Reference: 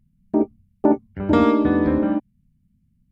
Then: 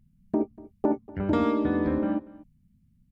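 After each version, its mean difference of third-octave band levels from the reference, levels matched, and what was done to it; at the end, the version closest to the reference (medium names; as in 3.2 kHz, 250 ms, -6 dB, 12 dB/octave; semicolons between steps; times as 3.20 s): 1.0 dB: compression 2:1, threshold -27 dBFS, peak gain reduction 9 dB; on a send: delay 240 ms -21 dB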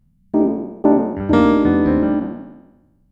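2.5 dB: spectral sustain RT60 1.04 s; peaking EQ 2.5 kHz -3.5 dB 0.23 oct; trim +1.5 dB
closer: first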